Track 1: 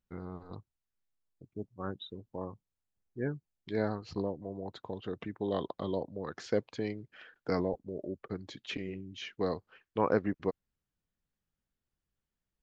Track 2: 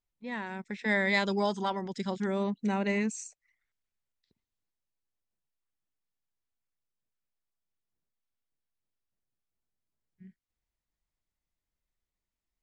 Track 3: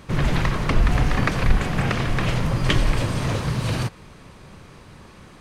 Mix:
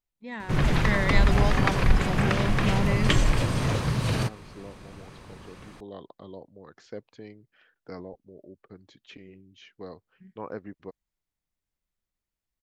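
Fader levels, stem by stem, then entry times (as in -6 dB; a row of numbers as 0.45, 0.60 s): -9.0, -0.5, -2.0 dB; 0.40, 0.00, 0.40 s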